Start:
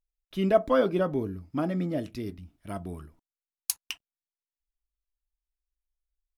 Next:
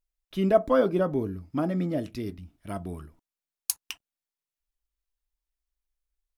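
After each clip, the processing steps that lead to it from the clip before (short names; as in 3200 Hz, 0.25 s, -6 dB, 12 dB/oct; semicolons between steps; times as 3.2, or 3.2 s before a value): dynamic EQ 2900 Hz, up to -5 dB, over -43 dBFS, Q 0.81; gain +1.5 dB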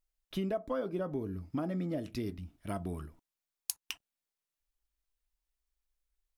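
compressor 6:1, threshold -32 dBFS, peak gain reduction 16.5 dB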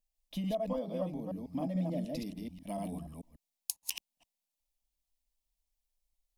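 reverse delay 0.146 s, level -1.5 dB; fixed phaser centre 380 Hz, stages 6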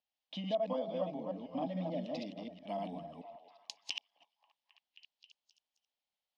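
speaker cabinet 240–4900 Hz, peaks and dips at 380 Hz -6 dB, 800 Hz +5 dB, 3100 Hz +6 dB; delay with a stepping band-pass 0.267 s, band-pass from 520 Hz, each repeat 0.7 oct, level -9 dB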